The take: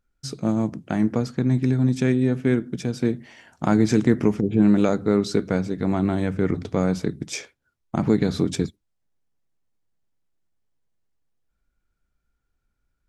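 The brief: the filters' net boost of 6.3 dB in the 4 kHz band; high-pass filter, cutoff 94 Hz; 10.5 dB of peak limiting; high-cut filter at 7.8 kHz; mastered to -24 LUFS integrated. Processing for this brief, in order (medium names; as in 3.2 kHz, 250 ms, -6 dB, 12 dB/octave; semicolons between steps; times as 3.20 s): high-pass 94 Hz; low-pass 7.8 kHz; peaking EQ 4 kHz +8 dB; trim +3 dB; peak limiter -12.5 dBFS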